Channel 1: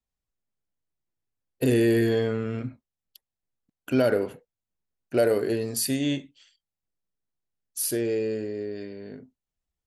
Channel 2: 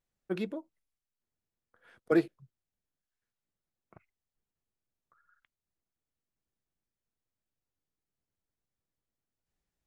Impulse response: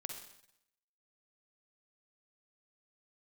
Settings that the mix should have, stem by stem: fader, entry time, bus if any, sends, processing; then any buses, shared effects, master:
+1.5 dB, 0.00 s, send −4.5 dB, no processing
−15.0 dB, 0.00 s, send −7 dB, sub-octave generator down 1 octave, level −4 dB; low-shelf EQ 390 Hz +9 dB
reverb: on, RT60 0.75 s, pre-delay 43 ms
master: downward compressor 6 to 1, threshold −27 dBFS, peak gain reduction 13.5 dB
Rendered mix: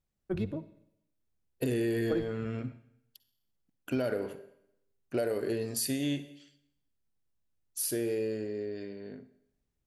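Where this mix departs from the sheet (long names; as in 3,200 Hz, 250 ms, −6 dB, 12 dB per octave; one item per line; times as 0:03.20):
stem 1 +1.5 dB → −7.0 dB
stem 2 −15.0 dB → −6.0 dB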